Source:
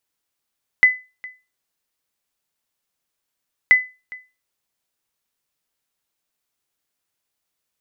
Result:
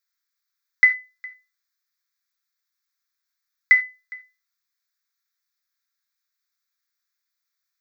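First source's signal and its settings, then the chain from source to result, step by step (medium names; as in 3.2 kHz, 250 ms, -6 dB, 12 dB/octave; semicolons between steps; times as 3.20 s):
sonar ping 2.01 kHz, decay 0.28 s, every 2.88 s, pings 2, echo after 0.41 s, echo -23 dB -4 dBFS
high-pass 1 kHz 24 dB/octave; static phaser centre 2.9 kHz, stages 6; gated-style reverb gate 120 ms falling, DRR 6.5 dB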